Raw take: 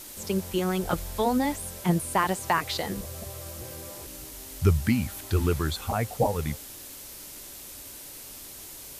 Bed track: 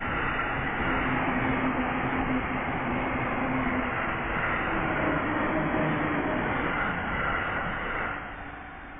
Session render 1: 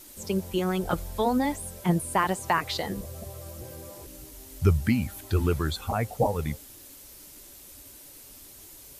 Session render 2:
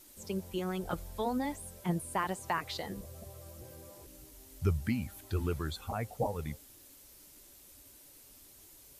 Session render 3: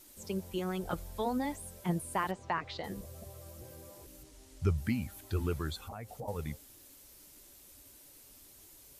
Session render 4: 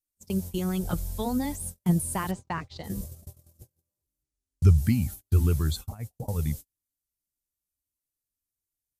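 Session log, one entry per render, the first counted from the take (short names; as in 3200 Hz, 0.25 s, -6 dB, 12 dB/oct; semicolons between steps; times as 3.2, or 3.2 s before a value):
denoiser 7 dB, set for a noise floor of -43 dBFS
gain -8.5 dB
2.31–2.84 air absorption 140 m; 4.23–4.78 LPF 8600 Hz; 5.77–6.28 compressor 3:1, threshold -42 dBFS
tone controls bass +13 dB, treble +12 dB; gate -34 dBFS, range -44 dB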